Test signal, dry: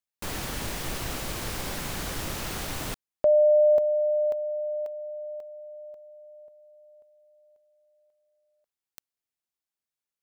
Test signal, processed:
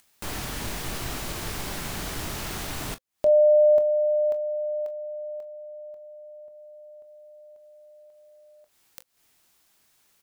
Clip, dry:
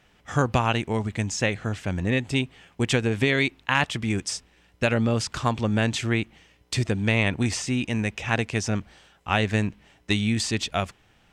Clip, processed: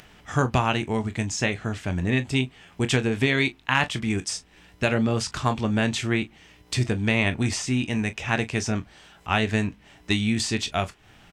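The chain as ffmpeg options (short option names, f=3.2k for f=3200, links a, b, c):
-af "bandreject=f=520:w=12,acompressor=mode=upward:threshold=-42dB:ratio=2.5:attack=4.9:release=211:knee=2.83:detection=peak,aecho=1:1:23|40:0.266|0.141"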